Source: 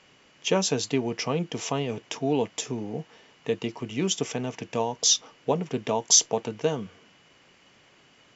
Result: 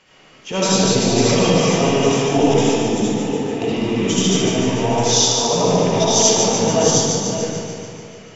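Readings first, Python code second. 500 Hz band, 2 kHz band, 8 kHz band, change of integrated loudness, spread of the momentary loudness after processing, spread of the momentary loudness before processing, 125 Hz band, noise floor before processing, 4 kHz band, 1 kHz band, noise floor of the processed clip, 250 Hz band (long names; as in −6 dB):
+12.0 dB, +11.5 dB, can't be measured, +10.0 dB, 9 LU, 13 LU, +13.5 dB, −59 dBFS, +9.5 dB, +12.5 dB, −47 dBFS, +13.0 dB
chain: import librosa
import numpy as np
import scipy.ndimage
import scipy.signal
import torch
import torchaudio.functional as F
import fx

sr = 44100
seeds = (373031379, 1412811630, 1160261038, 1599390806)

p1 = fx.reverse_delay(x, sr, ms=465, wet_db=-4.0)
p2 = fx.transient(p1, sr, attack_db=-11, sustain_db=5)
p3 = p2 + fx.echo_wet_highpass(p2, sr, ms=146, feedback_pct=64, hz=2800.0, wet_db=-4.5, dry=0)
p4 = fx.rev_freeverb(p3, sr, rt60_s=2.4, hf_ratio=0.3, predelay_ms=35, drr_db=-9.0)
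y = p4 * 10.0 ** (2.0 / 20.0)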